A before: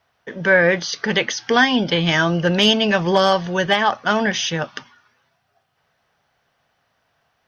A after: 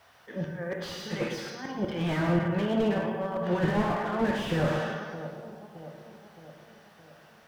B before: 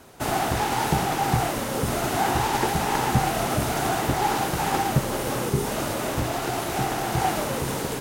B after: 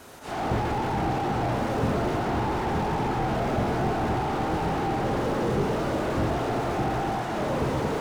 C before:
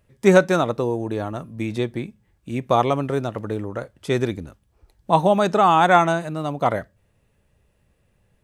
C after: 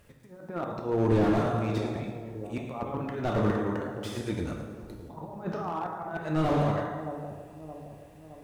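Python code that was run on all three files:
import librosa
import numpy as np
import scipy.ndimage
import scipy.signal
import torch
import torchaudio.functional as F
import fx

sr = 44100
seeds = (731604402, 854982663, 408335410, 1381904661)

y = fx.env_lowpass_down(x, sr, base_hz=1100.0, full_db=-12.5)
y = fx.low_shelf(y, sr, hz=300.0, db=-4.5)
y = fx.over_compress(y, sr, threshold_db=-25.0, ratio=-0.5)
y = fx.auto_swell(y, sr, attack_ms=316.0)
y = fx.echo_split(y, sr, split_hz=820.0, low_ms=618, high_ms=110, feedback_pct=52, wet_db=-14.5)
y = fx.quant_dither(y, sr, seeds[0], bits=12, dither='none')
y = fx.rev_plate(y, sr, seeds[1], rt60_s=1.5, hf_ratio=0.6, predelay_ms=0, drr_db=1.0)
y = fx.slew_limit(y, sr, full_power_hz=30.0)
y = F.gain(torch.from_numpy(y), 2.0).numpy()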